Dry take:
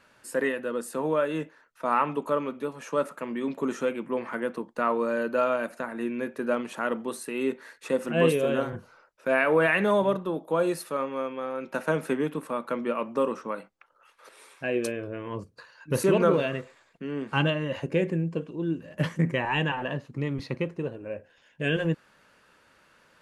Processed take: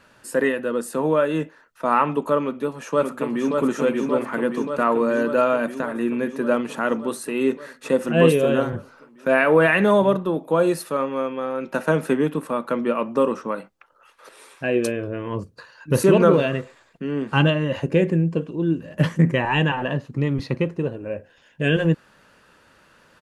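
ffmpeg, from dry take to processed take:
-filter_complex "[0:a]asplit=2[a][b];[b]afade=t=in:st=2.42:d=0.01,afade=t=out:st=3.57:d=0.01,aecho=0:1:580|1160|1740|2320|2900|3480|4060|4640|5220|5800|6380|6960:0.668344|0.501258|0.375943|0.281958|0.211468|0.158601|0.118951|0.0892131|0.0669099|0.0501824|0.0376368|0.0282276[c];[a][c]amix=inputs=2:normalize=0,lowshelf=f=320:g=4,bandreject=f=2.2k:w=19,volume=5dB"

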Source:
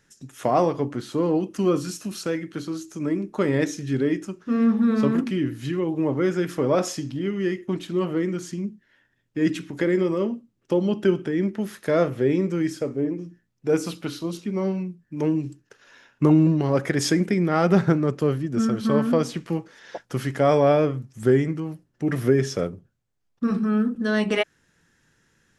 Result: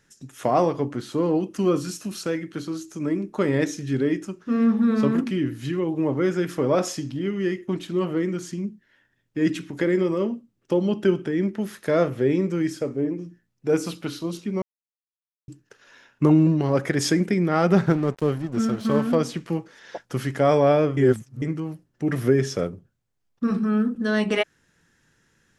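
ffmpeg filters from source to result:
-filter_complex "[0:a]asettb=1/sr,asplit=3[a][b][c];[a]atrim=end=17.864[d];[b]atrim=start=17.86:end=19.15,asetpts=PTS-STARTPTS,afade=t=in:d=0.004:c=qsin,afade=t=out:st=1.286:d=0.004:c=qsin,aeval=exprs='sgn(val(0))*max(abs(val(0))-0.0119,0)':c=same[e];[c]atrim=start=19.146[f];[d][e]acrossfade=d=0.004:c1=hsin:c2=qsin[g];[g][f]acrossfade=d=0.004:c1=qsin:c2=hsin,asplit=5[h][i][j][k][l];[h]atrim=end=14.62,asetpts=PTS-STARTPTS,afade=t=out:st=14.616:d=0.004:c=hsin[m];[i]atrim=start=14.62:end=15.48,asetpts=PTS-STARTPTS,volume=0[n];[j]atrim=start=15.48:end=20.972,asetpts=PTS-STARTPTS,afade=t=in:d=0.004:c=hsin[o];[k]atrim=start=20.968:end=21.422,asetpts=PTS-STARTPTS,areverse[p];[l]atrim=start=21.418[q];[m][n][o]concat=n=3:v=0:a=1[r];[r][p]acrossfade=d=0.004:c1=hsin:c2=hsin[s];[s][q]acrossfade=d=0.004:c1=hsin:c2=hsin"

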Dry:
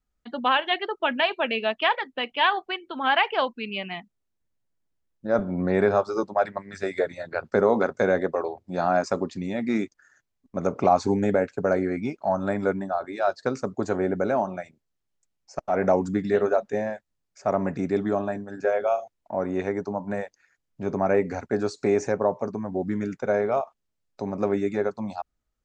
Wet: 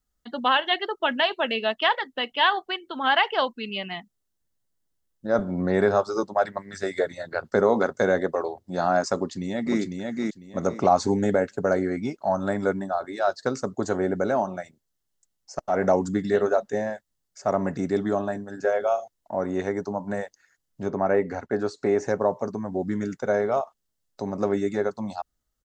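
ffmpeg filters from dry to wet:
-filter_complex "[0:a]asplit=2[a][b];[b]afade=t=in:st=9.16:d=0.01,afade=t=out:st=9.8:d=0.01,aecho=0:1:500|1000|1500|2000:0.707946|0.176986|0.0442466|0.0110617[c];[a][c]amix=inputs=2:normalize=0,asettb=1/sr,asplit=3[d][e][f];[d]atrim=end=20.884[g];[e]atrim=start=20.88:end=22.08,asetpts=PTS-STARTPTS,afade=t=in:d=0.004:c=qsin,afade=t=out:st=1.196:d=0.004:c=qsin,bass=f=250:g=-3,treble=f=4k:g=-12[h];[f]atrim=start=22.076[i];[g][h]acrossfade=d=0.004:c1=hsin:c2=qsin[j];[j][i]acrossfade=d=0.004:c1=qsin:c2=hsin,highshelf=f=4.2k:g=8.5,bandreject=f=2.4k:w=6"

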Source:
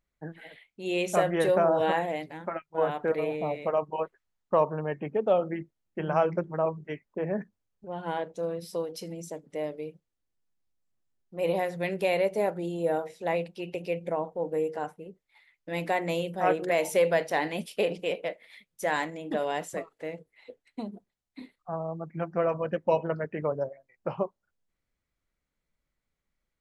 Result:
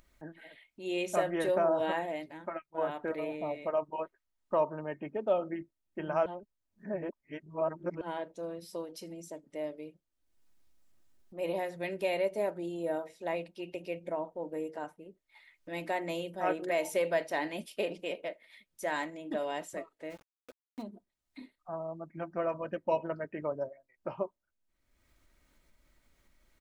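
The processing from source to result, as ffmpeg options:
-filter_complex "[0:a]asplit=3[a][b][c];[a]afade=t=out:st=20.09:d=0.02[d];[b]aeval=exprs='val(0)*gte(abs(val(0)),0.00631)':c=same,afade=t=in:st=20.09:d=0.02,afade=t=out:st=20.81:d=0.02[e];[c]afade=t=in:st=20.81:d=0.02[f];[d][e][f]amix=inputs=3:normalize=0,asplit=3[g][h][i];[g]atrim=end=6.262[j];[h]atrim=start=6.258:end=8.012,asetpts=PTS-STARTPTS,areverse[k];[i]atrim=start=8.008[l];[j][k]acrossfade=d=0.004:c1=hsin:c2=hsin[m];[m][l]acrossfade=d=0.004:c1=hsin:c2=hsin,aecho=1:1:3.2:0.4,acompressor=mode=upward:threshold=-43dB:ratio=2.5,volume=-6dB"

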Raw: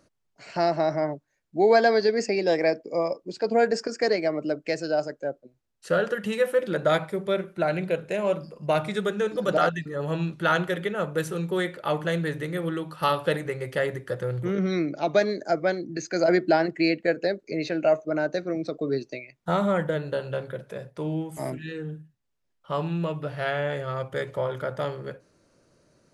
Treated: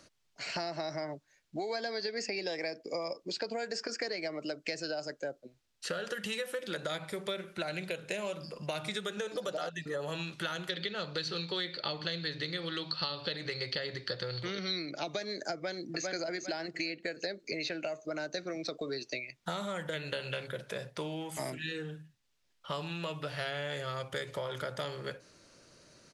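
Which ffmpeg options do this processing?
-filter_complex "[0:a]asettb=1/sr,asplit=3[a][b][c];[a]atrim=end=9.174[d];[b]atrim=start=9.17:end=10.1,asetpts=PTS-STARTPTS,afade=t=in:d=0.004:c=qsin,afade=t=out:st=0.926:d=0.004:c=qsin,equalizer=f=610:t=o:w=1.6:g=8[e];[c]atrim=start=10.096[f];[d][e]acrossfade=d=0.004:c1=hsin:c2=qsin[g];[g][f]acrossfade=d=0.004:c1=qsin:c2=hsin,asettb=1/sr,asplit=3[h][i][j];[h]atrim=end=10.694[k];[i]atrim=start=10.69:end=14.91,asetpts=PTS-STARTPTS,afade=t=in:d=0.004:c=qsin,afade=t=out:st=4.216:d=0.004:c=qsin,lowpass=f=4.4k:t=q:w=14[l];[j]atrim=start=14.906[m];[k][l]acrossfade=d=0.004:c1=hsin:c2=qsin[n];[n][m]acrossfade=d=0.004:c1=qsin:c2=hsin,asplit=2[o][p];[p]afade=t=in:st=15.54:d=0.01,afade=t=out:st=16.06:d=0.01,aecho=0:1:400|800|1200|1600|2000:0.446684|0.178673|0.0714694|0.0285877|0.0114351[q];[o][q]amix=inputs=2:normalize=0,asettb=1/sr,asplit=3[r][s][t];[r]atrim=end=19.934[u];[s]atrim=start=19.93:end=20.47,asetpts=PTS-STARTPTS,afade=t=in:d=0.004:c=qsin,afade=t=out:st=0.536:d=0.004:c=qsin,equalizer=f=2.3k:t=o:w=0.77:g=11[v];[t]atrim=start=20.466[w];[u][v]acrossfade=d=0.004:c1=hsin:c2=qsin[x];[x][w]acrossfade=d=0.004:c1=qsin:c2=hsin,acompressor=threshold=-25dB:ratio=6,equalizer=f=4k:w=0.42:g=11,acrossover=split=490|4300[y][z][aa];[y]acompressor=threshold=-42dB:ratio=4[ab];[z]acompressor=threshold=-39dB:ratio=4[ac];[aa]acompressor=threshold=-44dB:ratio=4[ad];[ab][ac][ad]amix=inputs=3:normalize=0"

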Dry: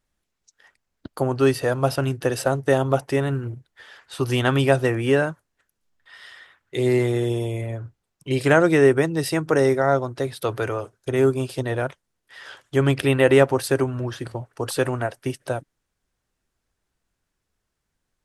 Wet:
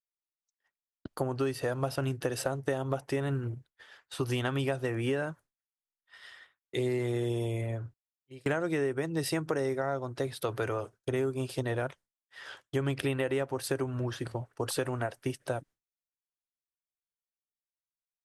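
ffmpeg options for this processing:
-filter_complex "[0:a]asplit=3[a][b][c];[a]atrim=end=7.94,asetpts=PTS-STARTPTS,afade=t=out:st=7.79:d=0.15:c=log:silence=0.0944061[d];[b]atrim=start=7.94:end=8.46,asetpts=PTS-STARTPTS,volume=-20.5dB[e];[c]atrim=start=8.46,asetpts=PTS-STARTPTS,afade=t=in:d=0.15:c=log:silence=0.0944061[f];[d][e][f]concat=n=3:v=0:a=1,agate=range=-33dB:threshold=-41dB:ratio=3:detection=peak,acompressor=threshold=-22dB:ratio=12,volume=-4.5dB"

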